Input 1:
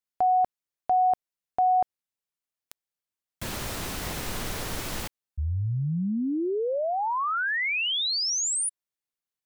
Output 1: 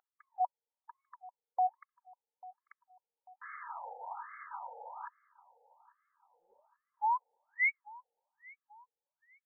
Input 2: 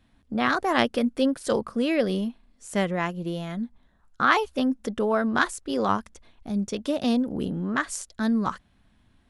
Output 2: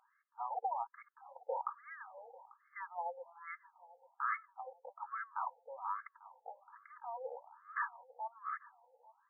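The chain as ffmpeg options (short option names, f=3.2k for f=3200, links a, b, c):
-filter_complex "[0:a]aemphasis=mode=reproduction:type=bsi,acrossover=split=590|3900[a][b][c];[b]dynaudnorm=f=230:g=9:m=4dB[d];[a][d][c]amix=inputs=3:normalize=0,equalizer=f=970:w=6.2:g=12,areverse,acompressor=threshold=-25dB:ratio=10:attack=0.12:release=372:knee=6:detection=peak,areverse,aecho=1:1:2.4:0.63,aeval=exprs='val(0)+0.01*(sin(2*PI*50*n/s)+sin(2*PI*2*50*n/s)/2+sin(2*PI*3*50*n/s)/3+sin(2*PI*4*50*n/s)/4+sin(2*PI*5*50*n/s)/5)':c=same,asplit=2[e][f];[f]adelay=843,lowpass=f=1.2k:p=1,volume=-19dB,asplit=2[g][h];[h]adelay=843,lowpass=f=1.2k:p=1,volume=0.54,asplit=2[i][j];[j]adelay=843,lowpass=f=1.2k:p=1,volume=0.54,asplit=2[k][l];[l]adelay=843,lowpass=f=1.2k:p=1,volume=0.54[m];[e][g][i][k][m]amix=inputs=5:normalize=0,afftfilt=real='re*between(b*sr/1024,620*pow(1600/620,0.5+0.5*sin(2*PI*1.2*pts/sr))/1.41,620*pow(1600/620,0.5+0.5*sin(2*PI*1.2*pts/sr))*1.41)':imag='im*between(b*sr/1024,620*pow(1600/620,0.5+0.5*sin(2*PI*1.2*pts/sr))/1.41,620*pow(1600/620,0.5+0.5*sin(2*PI*1.2*pts/sr))*1.41)':win_size=1024:overlap=0.75,volume=-1.5dB"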